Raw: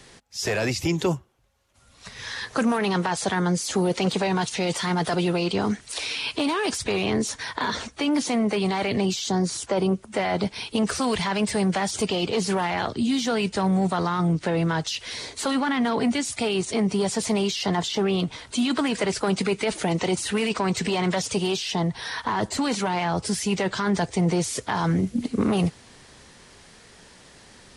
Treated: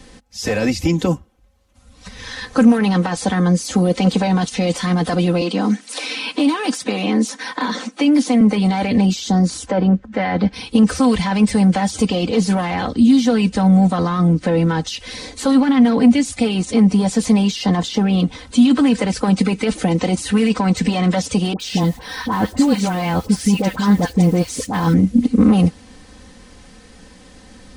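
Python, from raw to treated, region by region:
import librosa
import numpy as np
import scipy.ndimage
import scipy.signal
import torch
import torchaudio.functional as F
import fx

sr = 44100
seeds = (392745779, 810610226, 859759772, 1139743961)

y = fx.chain(x, sr, fx.highpass(hz=210.0, slope=24),
    fx.peak_eq(hz=420.0, db=-3.0, octaves=0.38),
    fx.band_squash(depth_pct=40), at=(5.41, 8.41))
y = fx.chain(y, sr, fx.gaussian_blur(sigma=1.7),
    fx.peak_eq(hz=1700.0, db=8.0, octaves=0.35),
    fx.band_widen(depth_pct=40), at=(9.71, 10.53))
y = fx.chain(y, sr, fx.block_float(bits=5),
    fx.dispersion(late='highs', ms=69.0, hz=1100.0), at=(21.53, 24.94))
y = fx.low_shelf(y, sr, hz=360.0, db=11.5)
y = y + 0.75 * np.pad(y, (int(3.9 * sr / 1000.0), 0))[:len(y)]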